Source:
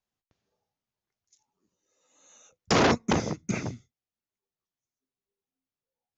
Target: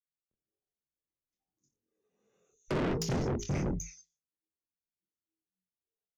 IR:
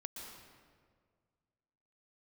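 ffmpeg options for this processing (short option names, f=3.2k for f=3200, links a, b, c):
-filter_complex "[0:a]bandreject=f=60:t=h:w=6,bandreject=f=120:t=h:w=6,bandreject=f=180:t=h:w=6,bandreject=f=240:t=h:w=6,bandreject=f=300:t=h:w=6,bandreject=f=360:t=h:w=6,bandreject=f=420:t=h:w=6,bandreject=f=480:t=h:w=6,bandreject=f=540:t=h:w=6,afftdn=nr=18:nf=-42,equalizer=f=250:t=o:w=1:g=5,equalizer=f=500:t=o:w=1:g=7,equalizer=f=1k:t=o:w=1:g=-8,equalizer=f=2k:t=o:w=1:g=-3,equalizer=f=4k:t=o:w=1:g=-7,flanger=delay=22.5:depth=2.4:speed=1.1,acompressor=threshold=-28dB:ratio=5,afreqshift=-75,acrossover=split=3600[a][b];[b]adelay=310[c];[a][c]amix=inputs=2:normalize=0,asoftclip=type=tanh:threshold=-38.5dB,dynaudnorm=f=530:g=3:m=10dB"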